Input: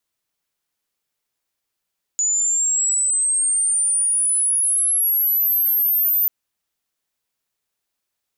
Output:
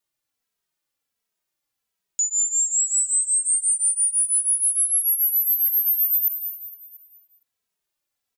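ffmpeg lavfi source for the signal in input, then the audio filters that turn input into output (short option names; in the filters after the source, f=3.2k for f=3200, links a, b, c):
-f lavfi -i "aevalsrc='pow(10,(-16.5+1.5*t/4.09)/20)*sin(2*PI*6900*4.09/log(14000/6900)*(exp(log(14000/6900)*t/4.09)-1))':d=4.09:s=44100"
-filter_complex "[0:a]asplit=2[a][b];[b]aecho=0:1:229|458|687|916|1145:0.355|0.153|0.0656|0.0282|0.0121[c];[a][c]amix=inputs=2:normalize=0,asplit=2[d][e];[e]adelay=2.8,afreqshift=-1.4[f];[d][f]amix=inputs=2:normalize=1"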